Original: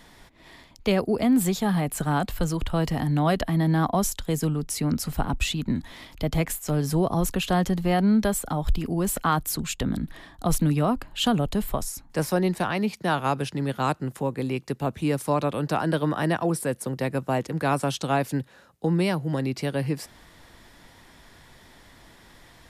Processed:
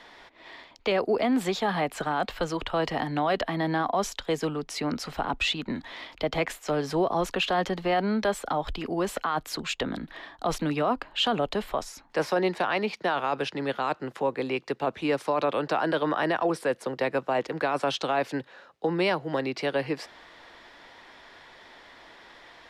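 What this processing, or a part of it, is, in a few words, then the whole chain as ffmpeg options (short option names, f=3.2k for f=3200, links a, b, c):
DJ mixer with the lows and highs turned down: -filter_complex "[0:a]acrossover=split=340 5000:gain=0.126 1 0.0794[a][b][c];[a][b][c]amix=inputs=3:normalize=0,alimiter=limit=-21dB:level=0:latency=1:release=13,volume=4.5dB"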